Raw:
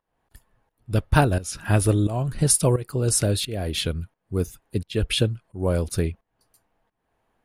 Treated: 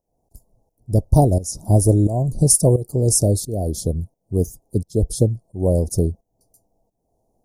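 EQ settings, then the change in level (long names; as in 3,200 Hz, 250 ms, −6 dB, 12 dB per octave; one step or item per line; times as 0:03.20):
elliptic band-stop filter 710–5,700 Hz, stop band 60 dB
+5.5 dB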